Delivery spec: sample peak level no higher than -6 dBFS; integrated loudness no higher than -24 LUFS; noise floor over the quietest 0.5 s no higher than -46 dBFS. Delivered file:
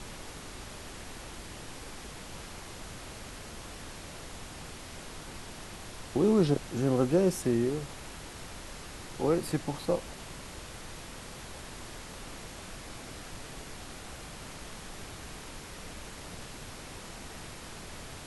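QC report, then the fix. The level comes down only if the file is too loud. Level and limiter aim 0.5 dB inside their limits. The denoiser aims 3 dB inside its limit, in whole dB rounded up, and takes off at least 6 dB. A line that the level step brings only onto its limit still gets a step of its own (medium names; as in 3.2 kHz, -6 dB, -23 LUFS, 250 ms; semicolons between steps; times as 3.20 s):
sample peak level -14.0 dBFS: pass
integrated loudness -36.0 LUFS: pass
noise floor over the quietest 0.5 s -44 dBFS: fail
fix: noise reduction 6 dB, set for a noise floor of -44 dBFS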